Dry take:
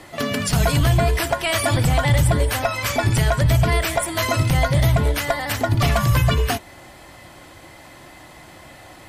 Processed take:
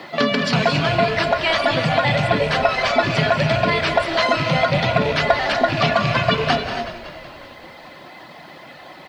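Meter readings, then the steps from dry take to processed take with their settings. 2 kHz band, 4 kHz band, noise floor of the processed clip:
+5.0 dB, +4.0 dB, -41 dBFS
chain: rattling part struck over -18 dBFS, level -18 dBFS; Chebyshev band-pass 170–4500 Hz, order 3; reverb removal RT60 1.1 s; bell 300 Hz -3 dB 0.42 oct; vocal rider; bit-crush 11-bit; frequency-shifting echo 0.186 s, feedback 61%, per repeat -31 Hz, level -12 dB; non-linear reverb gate 0.31 s rising, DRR 6 dB; gain +5 dB

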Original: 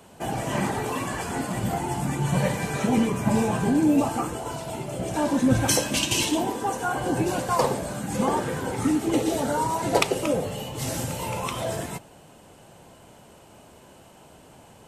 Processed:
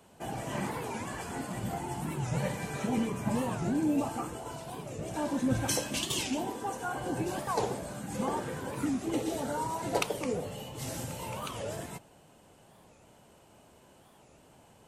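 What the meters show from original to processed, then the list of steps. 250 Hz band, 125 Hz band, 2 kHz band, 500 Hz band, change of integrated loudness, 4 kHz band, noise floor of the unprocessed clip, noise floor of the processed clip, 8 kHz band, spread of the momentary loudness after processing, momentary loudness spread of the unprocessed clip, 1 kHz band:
-8.5 dB, -8.5 dB, -8.5 dB, -8.5 dB, -8.5 dB, -8.5 dB, -51 dBFS, -60 dBFS, -8.5 dB, 9 LU, 9 LU, -8.5 dB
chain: record warp 45 rpm, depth 250 cents; gain -8.5 dB

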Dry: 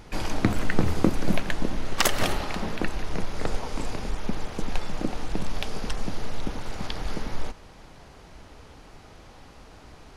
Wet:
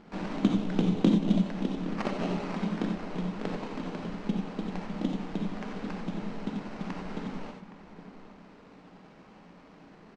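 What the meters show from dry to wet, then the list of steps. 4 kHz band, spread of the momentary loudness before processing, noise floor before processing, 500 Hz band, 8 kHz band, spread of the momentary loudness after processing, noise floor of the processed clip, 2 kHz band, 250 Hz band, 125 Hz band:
-10.5 dB, 24 LU, -49 dBFS, -3.5 dB, under -15 dB, 16 LU, -54 dBFS, -10.0 dB, +2.5 dB, -2.0 dB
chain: resonant low shelf 130 Hz -13 dB, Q 3; treble ducked by the level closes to 960 Hz, closed at -20.5 dBFS; sample-rate reducer 3500 Hz, jitter 20%; air absorption 150 m; outdoor echo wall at 140 m, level -13 dB; non-linear reverb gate 0.11 s rising, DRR 3 dB; downsampling 22050 Hz; gain -5.5 dB

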